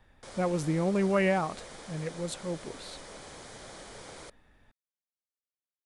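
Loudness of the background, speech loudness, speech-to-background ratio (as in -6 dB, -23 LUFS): -46.0 LUFS, -30.5 LUFS, 15.5 dB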